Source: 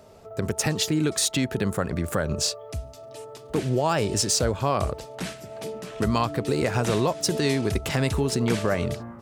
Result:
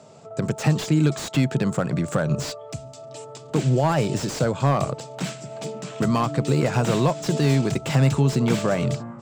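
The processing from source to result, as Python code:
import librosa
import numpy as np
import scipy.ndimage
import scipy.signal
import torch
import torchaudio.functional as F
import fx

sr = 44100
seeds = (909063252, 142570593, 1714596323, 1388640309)

y = fx.cabinet(x, sr, low_hz=120.0, low_slope=24, high_hz=7700.0, hz=(140.0, 410.0, 1800.0, 7600.0), db=(9, -4, -4, 10))
y = fx.slew_limit(y, sr, full_power_hz=95.0)
y = y * 10.0 ** (3.0 / 20.0)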